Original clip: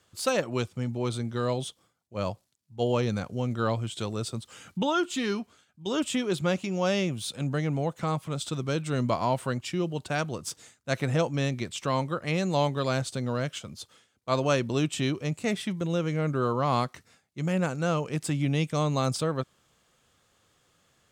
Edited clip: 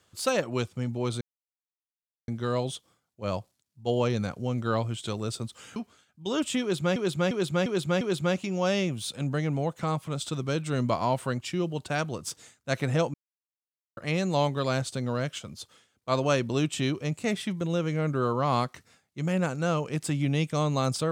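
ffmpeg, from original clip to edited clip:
-filter_complex "[0:a]asplit=9[a][b][c][d][e][f][g][h][i];[a]atrim=end=1.21,asetpts=PTS-STARTPTS,afade=t=out:st=1.206:d=0.004:c=hsin,apad=pad_dur=1.07[j];[b]atrim=start=1.21:end=4.692,asetpts=PTS-STARTPTS,afade=t=in:d=0.004:c=hsin[k];[c]atrim=start=5.358:end=6.562[l];[d]atrim=start=6.208:end=6.562[m];[e]atrim=start=6.208:end=6.562[n];[f]atrim=start=6.208:end=6.562[o];[g]atrim=start=6.208:end=11.34,asetpts=PTS-STARTPTS,afade=t=out:st=5.128:d=0.004:c=hsin[p];[h]atrim=start=11.34:end=12.17,asetpts=PTS-STARTPTS,volume=0[q];[i]atrim=start=12.17,asetpts=PTS-STARTPTS,afade=t=in:d=0.004:c=hsin[r];[j][k]concat=n=2:v=0:a=1[s];[s][l]acrossfade=d=0.004:c1=hsin:c2=hsin[t];[t][m]acrossfade=d=0.004:c1=hsin:c2=hsin[u];[u][n]acrossfade=d=0.004:c1=hsin:c2=hsin[v];[v][o]acrossfade=d=0.004:c1=hsin:c2=hsin[w];[p][q][r]concat=n=3:v=0:a=1[x];[w][x]acrossfade=d=0.004:c1=hsin:c2=hsin"

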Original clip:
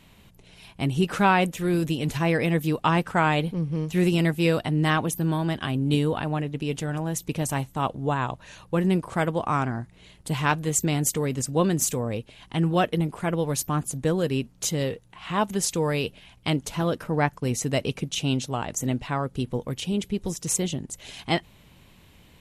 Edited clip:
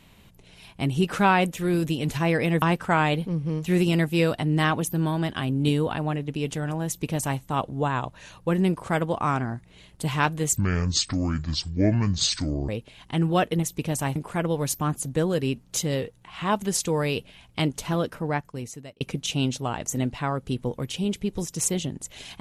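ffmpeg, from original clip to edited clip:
-filter_complex "[0:a]asplit=7[a][b][c][d][e][f][g];[a]atrim=end=2.622[h];[b]atrim=start=2.878:end=10.834[i];[c]atrim=start=10.83:end=12.1,asetpts=PTS-STARTPTS,asetrate=26460,aresample=44100[j];[d]atrim=start=12.096:end=13.042[k];[e]atrim=start=7.128:end=7.662[l];[f]atrim=start=13.038:end=17.89,asetpts=PTS-STARTPTS,afade=t=out:st=3.802:d=1.05[m];[g]atrim=start=17.89,asetpts=PTS-STARTPTS,afade=t=in:d=0.004:c=hsin[n];[h][i]acrossfade=d=0.004:c1=hsin:c2=hsin[o];[o][j]acrossfade=d=0.004:c1=hsin:c2=hsin[p];[p][k]acrossfade=d=0.004:c1=hsin:c2=hsin[q];[q][l]acrossfade=d=0.004:c1=hsin:c2=hsin[r];[m][n]concat=n=2:v=0:a=1[s];[r][s]acrossfade=d=0.004:c1=hsin:c2=hsin"

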